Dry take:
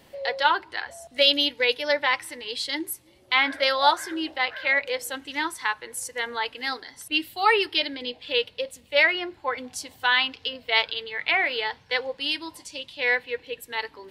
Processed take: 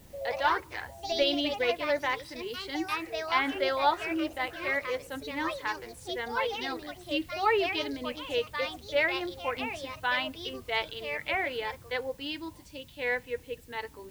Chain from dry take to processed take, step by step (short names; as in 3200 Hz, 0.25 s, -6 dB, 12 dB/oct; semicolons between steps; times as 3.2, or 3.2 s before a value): added noise violet -39 dBFS; RIAA curve playback; echoes that change speed 96 ms, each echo +3 st, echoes 2, each echo -6 dB; gain -6 dB